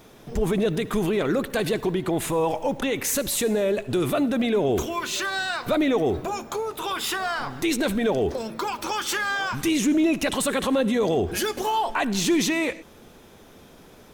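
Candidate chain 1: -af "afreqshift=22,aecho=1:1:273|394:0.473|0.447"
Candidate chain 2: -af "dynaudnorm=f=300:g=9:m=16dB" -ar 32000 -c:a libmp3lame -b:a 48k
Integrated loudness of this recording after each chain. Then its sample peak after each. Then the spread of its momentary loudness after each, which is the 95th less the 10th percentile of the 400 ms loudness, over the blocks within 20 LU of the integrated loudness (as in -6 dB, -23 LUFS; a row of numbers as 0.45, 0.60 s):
-23.0, -13.5 LUFS; -9.0, -1.5 dBFS; 6, 8 LU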